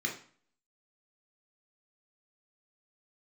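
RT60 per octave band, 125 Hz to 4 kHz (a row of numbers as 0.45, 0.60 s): 0.50, 0.50, 0.45, 0.50, 0.45, 0.40 s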